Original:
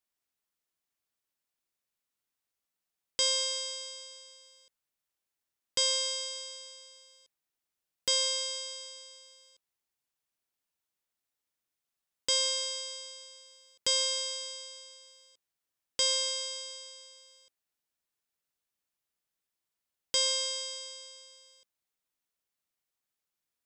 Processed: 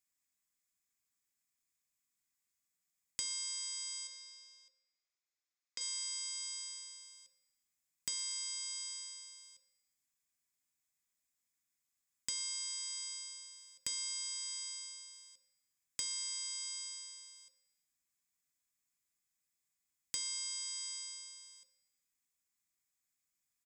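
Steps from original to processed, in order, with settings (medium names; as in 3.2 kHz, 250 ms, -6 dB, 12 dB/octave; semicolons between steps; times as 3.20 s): compression 6:1, threshold -41 dBFS, peak gain reduction 15.5 dB; 4.07–5.81 s: cabinet simulation 420–5800 Hz, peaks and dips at 920 Hz -7 dB, 1.7 kHz -4 dB, 3 kHz -6 dB; feedback delay 120 ms, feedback 56%, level -22.5 dB; reverberation RT60 0.50 s, pre-delay 3 ms, DRR 10 dB; trim -1 dB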